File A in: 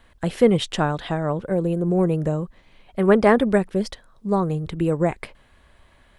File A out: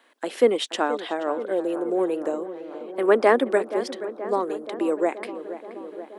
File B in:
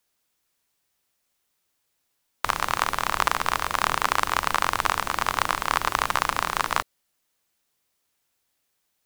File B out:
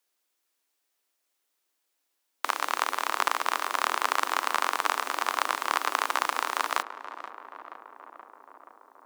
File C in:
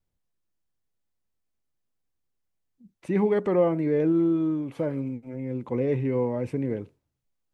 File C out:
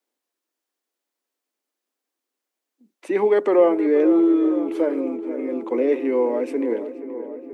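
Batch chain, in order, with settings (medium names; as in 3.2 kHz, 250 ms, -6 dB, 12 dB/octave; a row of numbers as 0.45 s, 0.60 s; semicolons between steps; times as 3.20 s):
steep high-pass 260 Hz 48 dB/octave; on a send: filtered feedback delay 477 ms, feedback 76%, low-pass 1.9 kHz, level -12.5 dB; on the sum: peak normalisation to -6 dBFS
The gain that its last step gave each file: -1.0 dB, -3.5 dB, +6.5 dB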